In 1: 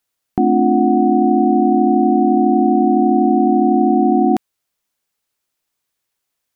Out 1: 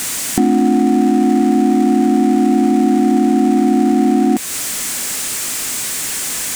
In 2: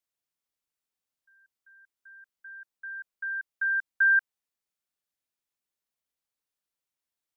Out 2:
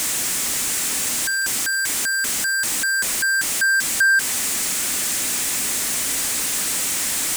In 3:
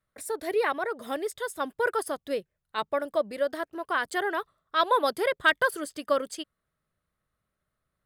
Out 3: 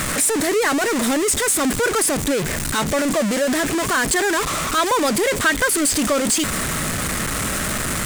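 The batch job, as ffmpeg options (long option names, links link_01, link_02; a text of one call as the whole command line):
ffmpeg -i in.wav -af "aeval=exprs='val(0)+0.5*0.1*sgn(val(0))':channel_layout=same,equalizer=frequency=250:width_type=o:width=1:gain=8,equalizer=frequency=2000:width_type=o:width=1:gain=5,equalizer=frequency=8000:width_type=o:width=1:gain=11,acompressor=threshold=-15dB:ratio=2" out.wav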